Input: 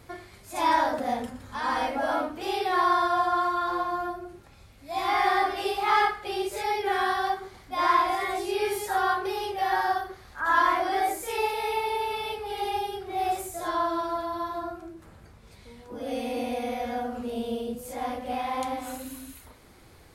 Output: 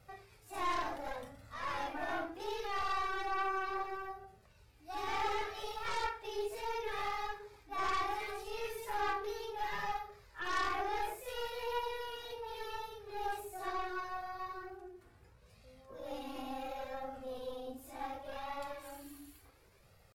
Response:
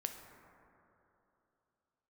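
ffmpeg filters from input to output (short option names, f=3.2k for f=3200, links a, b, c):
-filter_complex "[0:a]acrossover=split=4000[a][b];[b]asoftclip=type=tanh:threshold=-38dB[c];[a][c]amix=inputs=2:normalize=0,aeval=exprs='0.376*(cos(1*acos(clip(val(0)/0.376,-1,1)))-cos(1*PI/2))+0.133*(cos(3*acos(clip(val(0)/0.376,-1,1)))-cos(3*PI/2))+0.0944*(cos(5*acos(clip(val(0)/0.376,-1,1)))-cos(5*PI/2))+0.0211*(cos(6*acos(clip(val(0)/0.376,-1,1)))-cos(6*PI/2))+0.0531*(cos(8*acos(clip(val(0)/0.376,-1,1)))-cos(8*PI/2))':c=same,flanger=delay=1.6:depth=1.4:regen=-9:speed=0.7:shape=sinusoidal,asetrate=48091,aresample=44100,atempo=0.917004[d];[1:a]atrim=start_sample=2205,atrim=end_sample=3528[e];[d][e]afir=irnorm=-1:irlink=0,volume=-8dB"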